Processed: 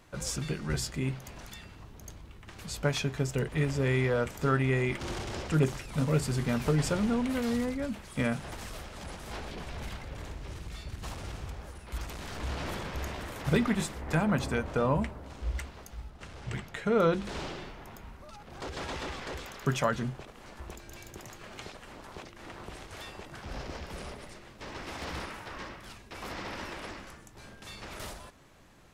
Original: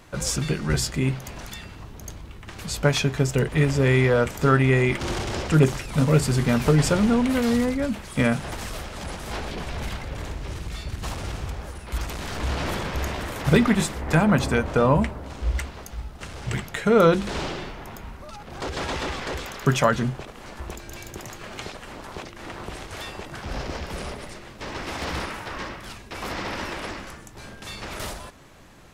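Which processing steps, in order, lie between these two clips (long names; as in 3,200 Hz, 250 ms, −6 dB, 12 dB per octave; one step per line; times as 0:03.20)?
0:16.10–0:17.25: high-shelf EQ 7,800 Hz −8.5 dB
level −8.5 dB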